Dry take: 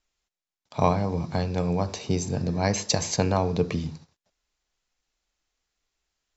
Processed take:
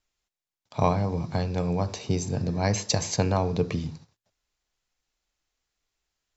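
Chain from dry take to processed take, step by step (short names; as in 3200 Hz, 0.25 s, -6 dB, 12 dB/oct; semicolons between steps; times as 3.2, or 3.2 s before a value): bell 110 Hz +8.5 dB 0.24 oct; gain -1.5 dB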